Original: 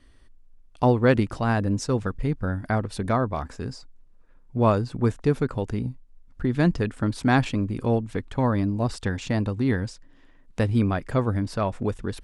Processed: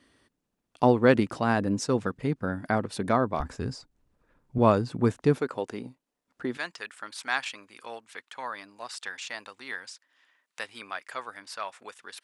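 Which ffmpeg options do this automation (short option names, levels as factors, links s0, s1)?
-af "asetnsamples=n=441:p=0,asendcmd='3.4 highpass f 50;4.58 highpass f 130;5.38 highpass f 370;6.57 highpass f 1300',highpass=170"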